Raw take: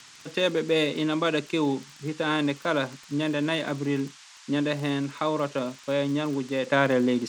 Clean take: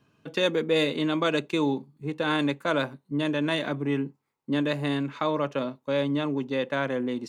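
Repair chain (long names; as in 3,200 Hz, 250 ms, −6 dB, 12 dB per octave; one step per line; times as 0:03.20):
click removal
noise reduction from a noise print 14 dB
level correction −6 dB, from 0:06.67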